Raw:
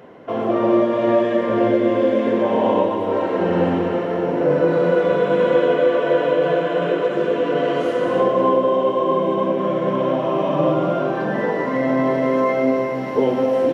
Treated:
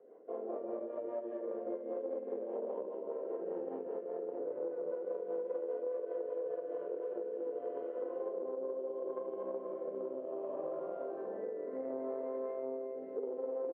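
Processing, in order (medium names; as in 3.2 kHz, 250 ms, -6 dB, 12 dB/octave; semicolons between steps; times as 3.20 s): on a send: early reflections 50 ms -5 dB, 76 ms -9 dB; on the sum: rotary cabinet horn 5 Hz, later 0.7 Hz, at 6.51 s; Chebyshev shaper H 2 -11 dB, 7 -29 dB, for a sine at -3 dBFS; ladder band-pass 490 Hz, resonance 55%; compression 4:1, threshold -34 dBFS, peak gain reduction 14.5 dB; trim -3.5 dB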